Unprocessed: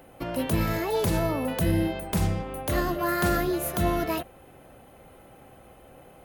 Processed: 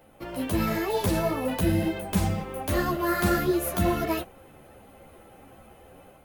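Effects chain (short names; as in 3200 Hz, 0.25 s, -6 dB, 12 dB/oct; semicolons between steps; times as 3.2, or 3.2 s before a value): AGC gain up to 4.5 dB; modulation noise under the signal 29 dB; ensemble effect; gain -1 dB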